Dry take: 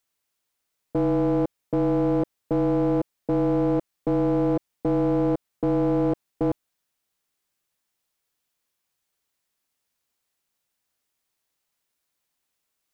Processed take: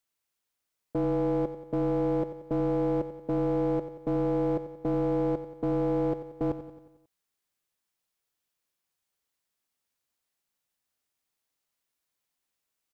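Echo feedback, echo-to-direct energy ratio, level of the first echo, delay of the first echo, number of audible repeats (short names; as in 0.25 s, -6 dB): 55%, -10.5 dB, -12.0 dB, 90 ms, 5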